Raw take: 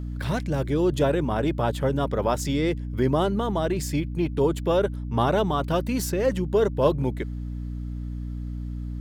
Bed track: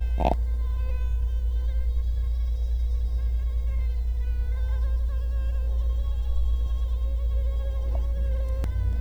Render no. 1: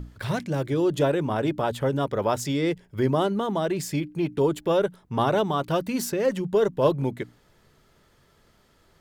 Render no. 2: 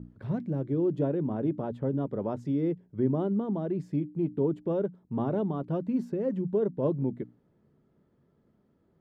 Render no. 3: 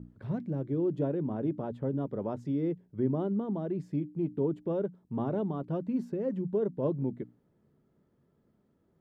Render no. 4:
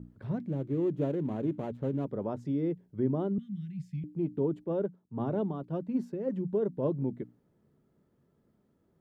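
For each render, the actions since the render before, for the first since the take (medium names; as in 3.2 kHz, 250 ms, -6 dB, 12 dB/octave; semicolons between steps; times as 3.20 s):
hum notches 60/120/180/240/300 Hz
band-pass filter 220 Hz, Q 1.2
trim -2.5 dB
0.46–2.05 s: median filter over 25 samples; 3.38–4.04 s: elliptic band-stop 180–2200 Hz, stop band 50 dB; 4.64–6.29 s: three bands expanded up and down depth 100%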